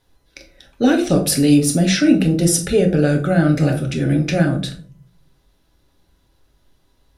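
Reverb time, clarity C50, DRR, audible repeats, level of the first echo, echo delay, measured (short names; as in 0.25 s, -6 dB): 0.50 s, 11.0 dB, 3.0 dB, none, none, none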